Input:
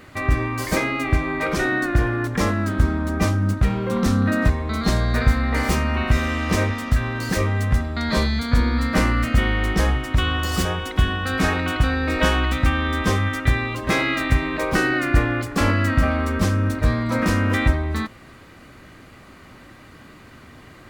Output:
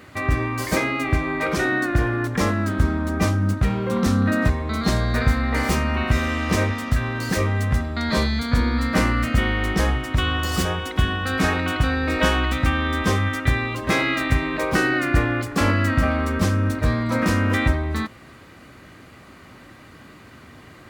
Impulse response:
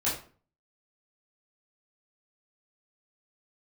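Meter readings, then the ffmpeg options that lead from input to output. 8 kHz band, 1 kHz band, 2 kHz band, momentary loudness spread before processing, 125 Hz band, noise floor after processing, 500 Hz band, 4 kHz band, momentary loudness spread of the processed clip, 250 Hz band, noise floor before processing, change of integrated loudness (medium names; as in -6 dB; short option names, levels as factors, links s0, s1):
0.0 dB, 0.0 dB, 0.0 dB, 3 LU, -1.0 dB, -46 dBFS, 0.0 dB, 0.0 dB, 3 LU, 0.0 dB, -45 dBFS, -0.5 dB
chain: -af "highpass=54"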